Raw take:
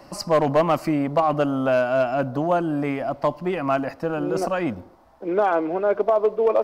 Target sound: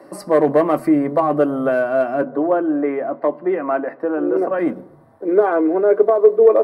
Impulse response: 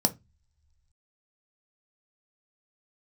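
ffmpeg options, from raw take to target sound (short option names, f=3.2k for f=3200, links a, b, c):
-filter_complex "[0:a]asettb=1/sr,asplit=3[a][b][c];[a]atrim=end=2.224[d];[b]atrim=start=2.22:end=4.59,asetpts=PTS-STARTPTS,afade=t=in:d=0.004:c=qsin,afade=t=out:st=2.366:d=0.004:c=qsin,acrossover=split=200 3100:gain=0.0794 1 0.1[e][f][g];[e][f][g]amix=inputs=3:normalize=0[h];[c]atrim=start=4.586[i];[d][h]acrossfade=d=0.004:c1=hsin:c2=qsin[j];[j][i]acrossfade=d=0.004:c1=qsin:c2=hsin[k];[1:a]atrim=start_sample=2205,asetrate=88200,aresample=44100[l];[k][l]afir=irnorm=-1:irlink=0,volume=-5.5dB"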